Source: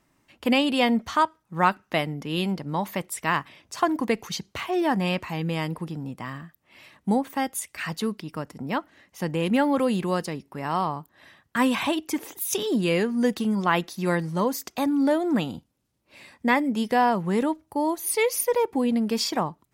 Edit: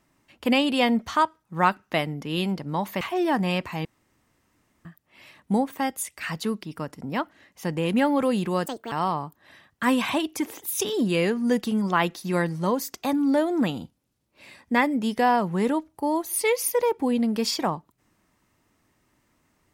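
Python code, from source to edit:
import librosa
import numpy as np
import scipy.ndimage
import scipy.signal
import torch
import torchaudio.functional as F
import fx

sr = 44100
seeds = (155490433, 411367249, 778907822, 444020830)

y = fx.edit(x, sr, fx.cut(start_s=3.01, length_s=1.57),
    fx.room_tone_fill(start_s=5.42, length_s=1.0),
    fx.speed_span(start_s=10.23, length_s=0.42, speed=1.63), tone=tone)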